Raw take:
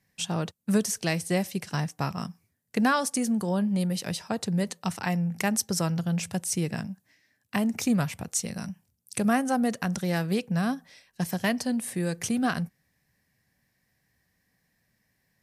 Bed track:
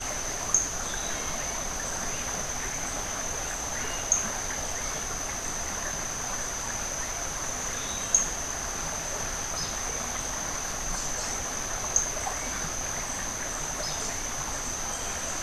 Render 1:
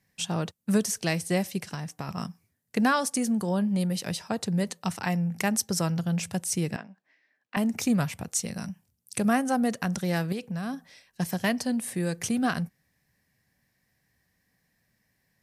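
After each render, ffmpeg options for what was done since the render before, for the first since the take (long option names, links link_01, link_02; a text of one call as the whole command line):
ffmpeg -i in.wav -filter_complex "[0:a]asettb=1/sr,asplit=3[link_01][link_02][link_03];[link_01]atrim=end=1.624[link_04];[link_02]atrim=start=1.62:end=2.09,asetpts=PTS-STARTPTS,afade=type=in:duration=0.004:curve=qsin,afade=type=out:start_time=0.466:duration=0.004:curve=qsin,acompressor=threshold=-29dB:ratio=6:attack=3.2:release=140:knee=1:detection=peak[link_05];[link_03]atrim=start=2.086[link_06];[link_04][link_05]acrossfade=duration=0.004:curve1=hsin:curve2=qsin[link_07];[link_07][link_06]acrossfade=duration=0.004:curve1=qsin:curve2=hsin,asettb=1/sr,asplit=3[link_08][link_09][link_10];[link_08]atrim=end=6.764[link_11];[link_09]atrim=start=6.76:end=7.57,asetpts=PTS-STARTPTS,afade=type=in:duration=0.004:curve=qsin,afade=type=out:start_time=0.806:duration=0.004:curve=qsin,highpass=400,lowpass=2700[link_12];[link_10]atrim=start=7.566[link_13];[link_11][link_12]acrossfade=duration=0.004:curve1=hsin:curve2=qsin[link_14];[link_14][link_13]acrossfade=duration=0.004:curve1=qsin:curve2=hsin,asettb=1/sr,asplit=3[link_15][link_16][link_17];[link_15]atrim=end=10.324[link_18];[link_16]atrim=start=10.32:end=10.74,asetpts=PTS-STARTPTS,afade=type=in:duration=0.004:curve=qsin,afade=type=out:start_time=0.416:duration=0.004:curve=qsin,acompressor=threshold=-30dB:ratio=3:attack=3.2:release=140:knee=1:detection=peak[link_19];[link_17]atrim=start=10.736[link_20];[link_18][link_19]acrossfade=duration=0.004:curve1=hsin:curve2=qsin[link_21];[link_21][link_20]acrossfade=duration=0.004:curve1=qsin:curve2=hsin" out.wav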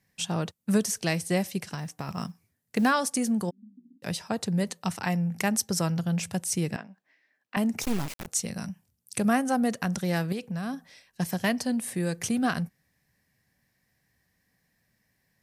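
ffmpeg -i in.wav -filter_complex "[0:a]asettb=1/sr,asplit=3[link_01][link_02][link_03];[link_01]atrim=end=1.784[link_04];[link_02]atrim=start=1.78:end=2.91,asetpts=PTS-STARTPTS,afade=type=in:duration=0.004:curve=qsin,afade=type=out:start_time=1.126:duration=0.004:curve=qsin,acrusher=bits=8:mode=log:mix=0:aa=0.000001[link_05];[link_03]atrim=start=2.906[link_06];[link_04][link_05]acrossfade=duration=0.004:curve1=hsin:curve2=qsin[link_07];[link_07][link_06]acrossfade=duration=0.004:curve1=qsin:curve2=hsin,asplit=3[link_08][link_09][link_10];[link_08]afade=type=out:start_time=3.49:duration=0.02[link_11];[link_09]asuperpass=centerf=260:order=8:qfactor=4.7,afade=type=in:start_time=3.49:duration=0.02,afade=type=out:start_time=4.02:duration=0.02[link_12];[link_10]afade=type=in:start_time=4.02:duration=0.02[link_13];[link_11][link_12][link_13]amix=inputs=3:normalize=0,asplit=3[link_14][link_15][link_16];[link_14]afade=type=out:start_time=7.82:duration=0.02[link_17];[link_15]acrusher=bits=3:dc=4:mix=0:aa=0.000001,afade=type=in:start_time=7.82:duration=0.02,afade=type=out:start_time=8.26:duration=0.02[link_18];[link_16]afade=type=in:start_time=8.26:duration=0.02[link_19];[link_17][link_18][link_19]amix=inputs=3:normalize=0" out.wav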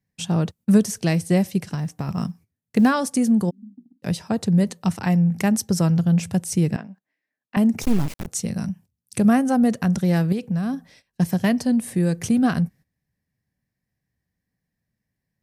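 ffmpeg -i in.wav -af "agate=range=-14dB:threshold=-52dB:ratio=16:detection=peak,lowshelf=frequency=440:gain=11" out.wav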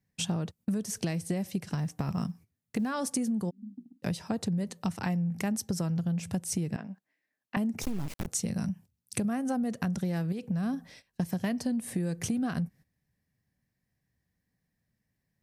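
ffmpeg -i in.wav -af "alimiter=limit=-14dB:level=0:latency=1:release=293,acompressor=threshold=-28dB:ratio=6" out.wav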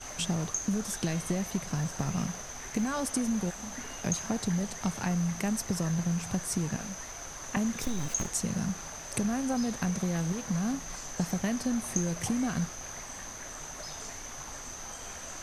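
ffmpeg -i in.wav -i bed.wav -filter_complex "[1:a]volume=-9.5dB[link_01];[0:a][link_01]amix=inputs=2:normalize=0" out.wav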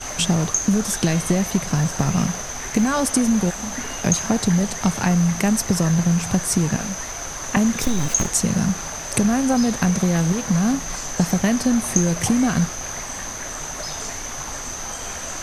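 ffmpeg -i in.wav -af "volume=11.5dB" out.wav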